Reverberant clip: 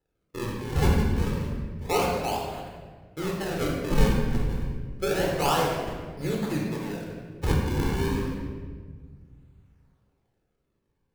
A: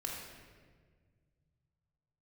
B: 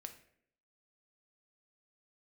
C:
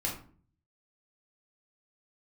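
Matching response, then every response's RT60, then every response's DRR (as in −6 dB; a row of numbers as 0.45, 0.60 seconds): A; 1.6, 0.65, 0.45 seconds; −1.5, 6.0, −3.0 decibels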